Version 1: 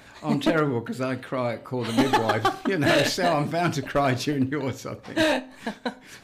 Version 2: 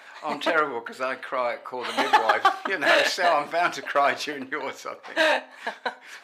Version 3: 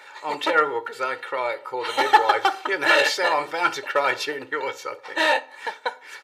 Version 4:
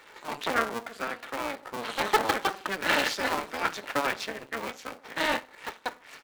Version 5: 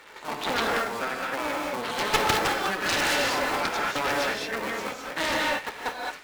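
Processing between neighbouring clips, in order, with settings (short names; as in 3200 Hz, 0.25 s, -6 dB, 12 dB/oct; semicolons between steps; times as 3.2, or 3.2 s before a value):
HPF 810 Hz 12 dB/oct; high shelf 3700 Hz -12 dB; gain +7 dB
comb 2.2 ms, depth 83%
cycle switcher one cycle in 2, muted; gain -4.5 dB
non-linear reverb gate 0.24 s rising, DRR 0 dB; added harmonics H 3 -16 dB, 7 -11 dB, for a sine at -5 dBFS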